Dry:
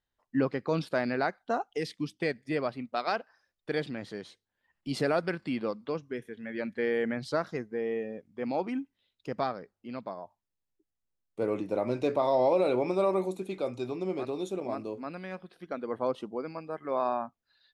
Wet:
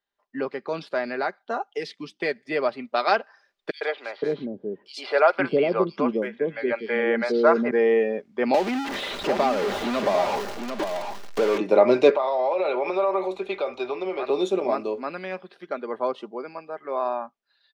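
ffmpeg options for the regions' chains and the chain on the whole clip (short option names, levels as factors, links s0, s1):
-filter_complex "[0:a]asettb=1/sr,asplit=3[s0][s1][s2];[s0]atrim=end=3.704[s3];[s1]atrim=start=3.7:end=7.71,asetpts=PTS-STARTPTS,afade=t=in:d=0.004:c=qsin,afade=t=out:st=4.006:d=0.004:c=qsin,highshelf=f=4000:g=-11.5,bandreject=f=1800:w=14,acrossover=split=500|3700[s4][s5][s6];[s5]adelay=110[s7];[s4]adelay=520[s8];[s8][s7][s6]amix=inputs=3:normalize=0,atrim=end_sample=176841[s9];[s2]atrim=start=7.706[s10];[s3][s9]acrossfade=d=0.004:c1=hsin:c2=qsin[s11];[s11][s10]acrossfade=d=0.004:c1=qsin:c2=hsin,asettb=1/sr,asplit=3[s12][s13][s14];[s12]atrim=end=8.544[s15];[s13]atrim=start=8.54:end=11.58,asetpts=PTS-STARTPTS,afade=t=in:d=0.004:c=qsin,afade=t=out:st=3.036:d=0.004:c=qsin,aeval=exprs='val(0)+0.5*0.0299*sgn(val(0))':c=same,acrossover=split=850|1700[s16][s17][s18];[s16]acompressor=threshold=0.02:ratio=4[s19];[s17]acompressor=threshold=0.00355:ratio=4[s20];[s18]acompressor=threshold=0.00398:ratio=4[s21];[s19][s20][s21]amix=inputs=3:normalize=0,aecho=1:1:749:0.473,atrim=end_sample=134064[s22];[s14]atrim=start=11.576[s23];[s15][s22]acrossfade=d=0.004:c1=hsin:c2=qsin[s24];[s24][s23]acrossfade=d=0.004:c1=qsin:c2=hsin,asettb=1/sr,asplit=3[s25][s26][s27];[s25]atrim=end=12.104[s28];[s26]atrim=start=12.1:end=14.3,asetpts=PTS-STARTPTS,afade=t=in:d=0.004:c=qsin,afade=t=out:st=2.196:d=0.004:c=qsin,acrossover=split=470 4300:gain=0.224 1 0.2[s29][s30][s31];[s29][s30][s31]amix=inputs=3:normalize=0,acompressor=threshold=0.0178:ratio=4:attack=3.2:release=140:knee=1:detection=peak,aeval=exprs='val(0)+0.000501*(sin(2*PI*60*n/s)+sin(2*PI*2*60*n/s)/2+sin(2*PI*3*60*n/s)/3+sin(2*PI*4*60*n/s)/4+sin(2*PI*5*60*n/s)/5)':c=same[s32];[s27]atrim=start=14.296[s33];[s28][s32]acrossfade=d=0.004:c1=hsin:c2=qsin[s34];[s34][s33]acrossfade=d=0.004:c1=qsin:c2=hsin,acrossover=split=280 5900:gain=0.141 1 0.178[s35][s36][s37];[s35][s36][s37]amix=inputs=3:normalize=0,aecho=1:1:5:0.38,dynaudnorm=f=370:g=17:m=3.98,volume=1.26"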